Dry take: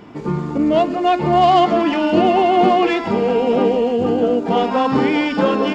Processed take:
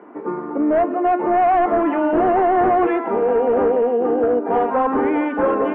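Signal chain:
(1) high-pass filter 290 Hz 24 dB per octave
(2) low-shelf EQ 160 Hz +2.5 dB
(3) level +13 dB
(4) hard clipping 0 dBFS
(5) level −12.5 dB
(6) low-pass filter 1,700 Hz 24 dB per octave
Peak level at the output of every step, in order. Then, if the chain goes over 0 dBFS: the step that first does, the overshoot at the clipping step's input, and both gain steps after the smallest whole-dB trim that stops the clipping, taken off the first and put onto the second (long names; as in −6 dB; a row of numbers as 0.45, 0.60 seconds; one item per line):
−3.0, −3.0, +10.0, 0.0, −12.5, −11.0 dBFS
step 3, 10.0 dB
step 3 +3 dB, step 5 −2.5 dB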